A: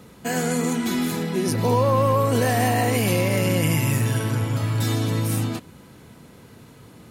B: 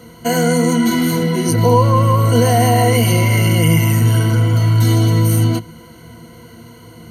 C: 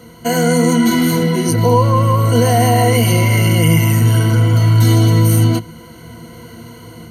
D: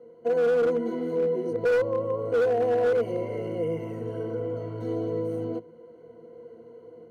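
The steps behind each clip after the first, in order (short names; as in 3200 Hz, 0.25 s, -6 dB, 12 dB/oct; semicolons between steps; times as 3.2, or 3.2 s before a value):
ripple EQ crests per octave 1.9, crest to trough 17 dB; in parallel at 0 dB: limiter -11.5 dBFS, peak gain reduction 9.5 dB; on the sum: gain -2 dB
AGC gain up to 4 dB
band-pass 470 Hz, Q 5.3; hard clip -18 dBFS, distortion -13 dB; gain -1.5 dB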